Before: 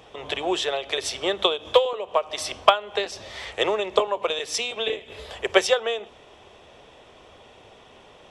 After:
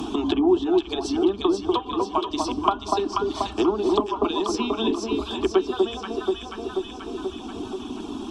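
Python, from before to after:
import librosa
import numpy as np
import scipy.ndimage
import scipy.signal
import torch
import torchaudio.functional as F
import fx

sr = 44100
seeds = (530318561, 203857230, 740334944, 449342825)

y = fx.rider(x, sr, range_db=5, speed_s=2.0)
y = fx.low_shelf_res(y, sr, hz=390.0, db=10.0, q=3.0)
y = fx.fixed_phaser(y, sr, hz=530.0, stages=6)
y = fx.rev_plate(y, sr, seeds[0], rt60_s=2.7, hf_ratio=0.9, predelay_ms=0, drr_db=9.5)
y = fx.dereverb_blind(y, sr, rt60_s=1.4)
y = fx.env_lowpass_down(y, sr, base_hz=1400.0, full_db=-20.5)
y = fx.echo_alternate(y, sr, ms=242, hz=1000.0, feedback_pct=68, wet_db=-2.5)
y = fx.band_squash(y, sr, depth_pct=70)
y = y * librosa.db_to_amplitude(1.5)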